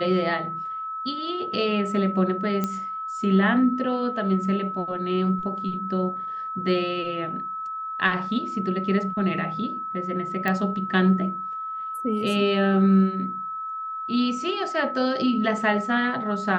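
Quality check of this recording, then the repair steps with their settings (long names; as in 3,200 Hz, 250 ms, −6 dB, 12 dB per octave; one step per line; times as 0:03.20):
whistle 1,300 Hz −29 dBFS
0:02.64: click −12 dBFS
0:10.48: click −13 dBFS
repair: click removal
notch filter 1,300 Hz, Q 30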